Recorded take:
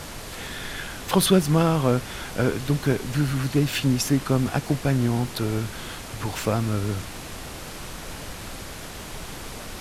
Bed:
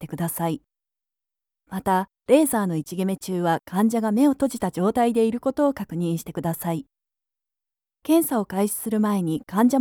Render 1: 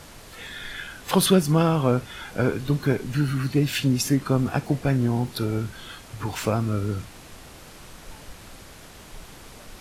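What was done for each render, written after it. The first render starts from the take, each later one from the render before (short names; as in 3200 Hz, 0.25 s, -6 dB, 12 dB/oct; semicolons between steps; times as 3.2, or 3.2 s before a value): noise print and reduce 8 dB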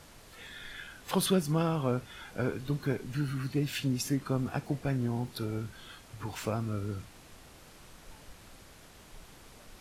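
gain -9 dB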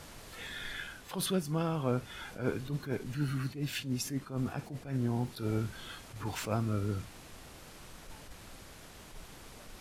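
vocal rider within 4 dB 0.5 s; attack slew limiter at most 150 dB/s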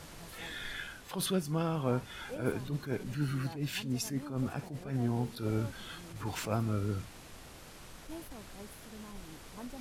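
add bed -27.5 dB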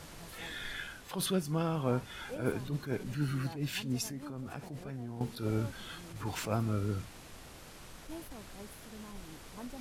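4.06–5.21 compressor, threshold -37 dBFS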